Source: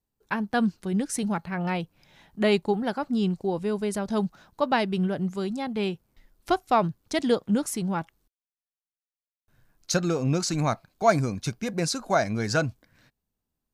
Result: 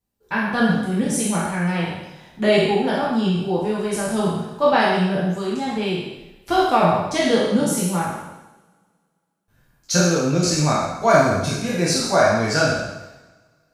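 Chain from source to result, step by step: spectral sustain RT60 0.96 s; two-slope reverb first 0.46 s, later 2.3 s, from -28 dB, DRR -3.5 dB; trim -1.5 dB

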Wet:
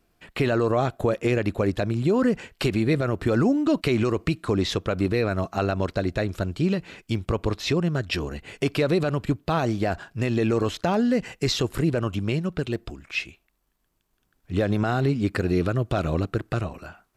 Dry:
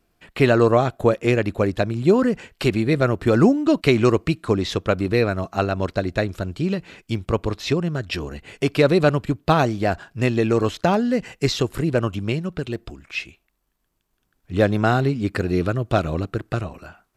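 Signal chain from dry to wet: peak limiter -13 dBFS, peak gain reduction 10.5 dB

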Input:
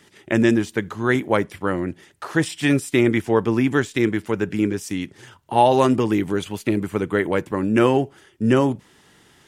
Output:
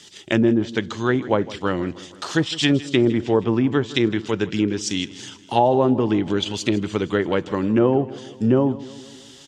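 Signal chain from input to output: low-pass that closes with the level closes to 810 Hz, closed at -13 dBFS; high-order bell 4.8 kHz +13.5 dB; on a send: feedback delay 159 ms, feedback 59%, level -18 dB

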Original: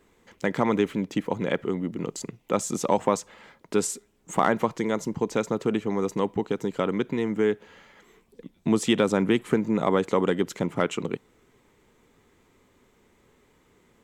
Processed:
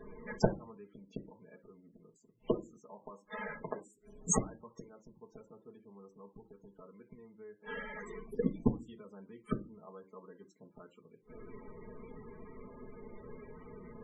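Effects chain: dynamic bell 1.1 kHz, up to +4 dB, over -37 dBFS, Q 1.5; inverted gate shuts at -25 dBFS, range -42 dB; treble shelf 7.7 kHz +4.5 dB; reverberation RT60 0.30 s, pre-delay 5 ms, DRR 0 dB; loudest bins only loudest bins 32; trim +7.5 dB

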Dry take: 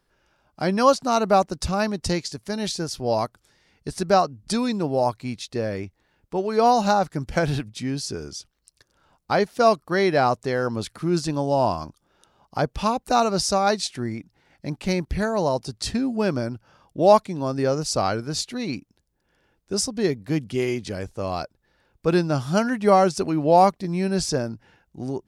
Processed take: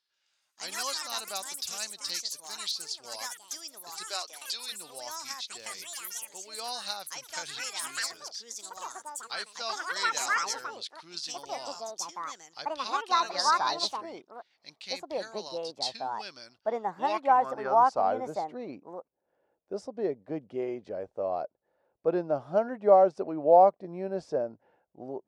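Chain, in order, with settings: band-pass sweep 4.1 kHz -> 600 Hz, 16.67–18.23 s; ever faster or slower copies 139 ms, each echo +5 st, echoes 3; 4.04–4.72 s: high-pass 320 Hz 24 dB/octave

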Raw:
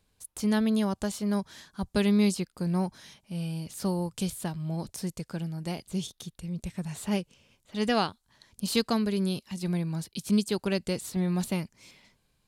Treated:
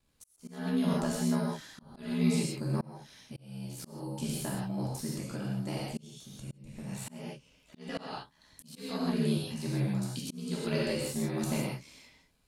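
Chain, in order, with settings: ring modulator 36 Hz; gated-style reverb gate 190 ms flat, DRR -5 dB; slow attack 524 ms; trim -3 dB

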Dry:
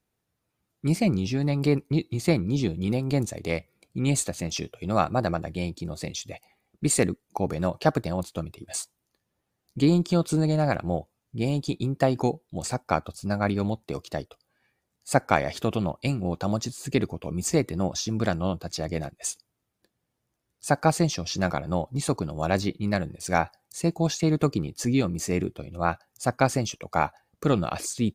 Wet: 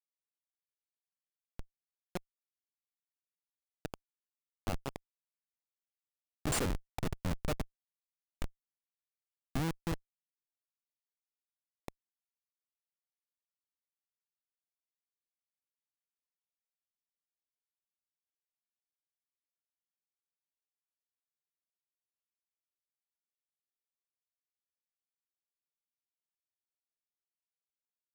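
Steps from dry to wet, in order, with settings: Doppler pass-by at 6.83 s, 21 m/s, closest 22 m; Schmitt trigger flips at -25 dBFS; trim +5.5 dB

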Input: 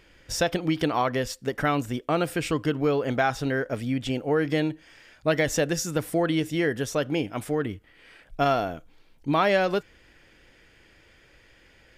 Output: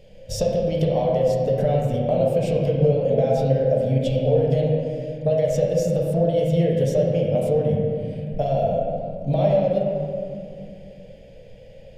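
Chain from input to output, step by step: FFT filter 100 Hz 0 dB, 200 Hz +6 dB, 320 Hz -16 dB, 550 Hz +13 dB, 1.2 kHz -26 dB, 2.9 kHz -7 dB; compression 6:1, threshold -27 dBFS, peak gain reduction 16 dB; reverberation RT60 2.4 s, pre-delay 7 ms, DRR -3.5 dB; trim +5 dB

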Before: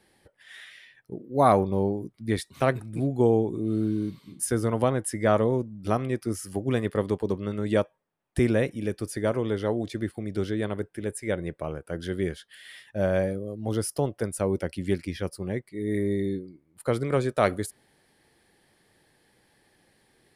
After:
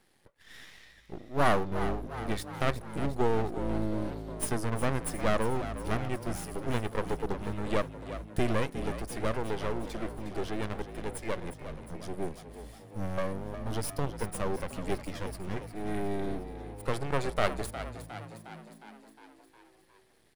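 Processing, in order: 11.51–13.18 s: high-order bell 1.4 kHz -13 dB 3 oct; half-wave rectifier; frequency-shifting echo 359 ms, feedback 61%, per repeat +54 Hz, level -11.5 dB

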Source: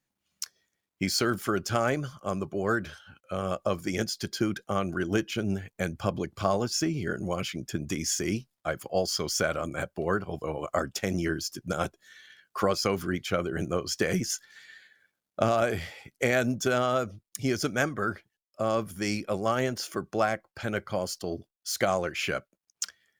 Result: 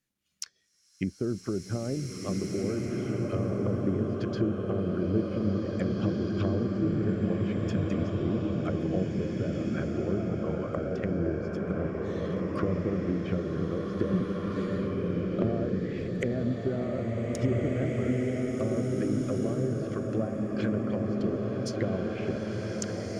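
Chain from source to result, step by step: low-pass that closes with the level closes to 460 Hz, closed at -25.5 dBFS; peaking EQ 840 Hz -9 dB 1 oct; swelling reverb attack 2020 ms, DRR -3 dB

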